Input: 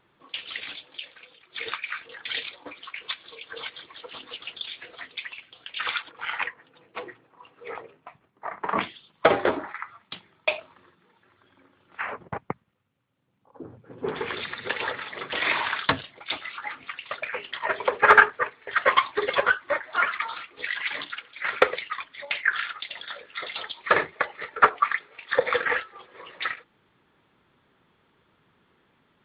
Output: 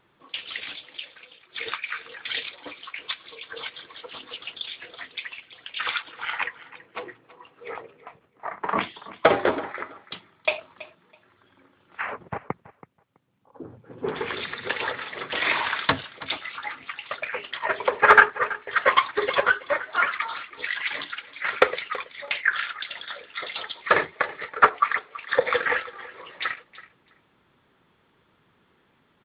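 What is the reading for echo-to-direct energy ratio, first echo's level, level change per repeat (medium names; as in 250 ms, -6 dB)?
-17.5 dB, -17.5 dB, -15.5 dB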